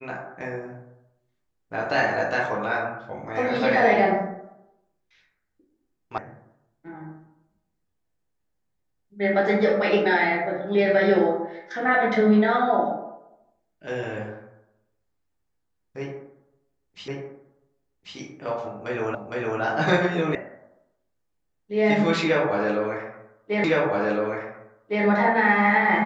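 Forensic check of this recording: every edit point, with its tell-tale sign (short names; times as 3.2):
6.18 sound cut off
17.08 repeat of the last 1.09 s
19.15 repeat of the last 0.46 s
20.35 sound cut off
23.64 repeat of the last 1.41 s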